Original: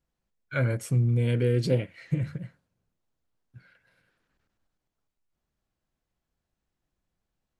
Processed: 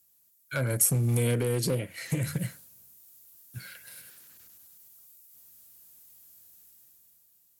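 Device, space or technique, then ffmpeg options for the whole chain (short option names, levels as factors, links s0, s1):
FM broadcast chain: -filter_complex "[0:a]highpass=f=68:w=0.5412,highpass=f=68:w=1.3066,dynaudnorm=f=200:g=9:m=3.16,acrossover=split=330|1600[s0][s1][s2];[s0]acompressor=threshold=0.0794:ratio=4[s3];[s1]acompressor=threshold=0.0794:ratio=4[s4];[s2]acompressor=threshold=0.00398:ratio=4[s5];[s3][s4][s5]amix=inputs=3:normalize=0,aemphasis=mode=production:type=75fm,alimiter=limit=0.133:level=0:latency=1:release=367,asoftclip=type=hard:threshold=0.0944,lowpass=f=15000:w=0.5412,lowpass=f=15000:w=1.3066,aemphasis=mode=production:type=75fm"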